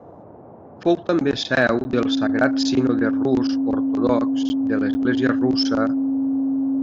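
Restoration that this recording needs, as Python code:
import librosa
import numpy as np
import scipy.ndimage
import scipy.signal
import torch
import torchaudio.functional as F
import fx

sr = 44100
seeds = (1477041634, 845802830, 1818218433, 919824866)

y = fx.fix_declip(x, sr, threshold_db=-5.5)
y = fx.notch(y, sr, hz=270.0, q=30.0)
y = fx.fix_interpolate(y, sr, at_s=(1.84, 4.49, 4.94), length_ms=10.0)
y = fx.noise_reduce(y, sr, print_start_s=0.0, print_end_s=0.5, reduce_db=24.0)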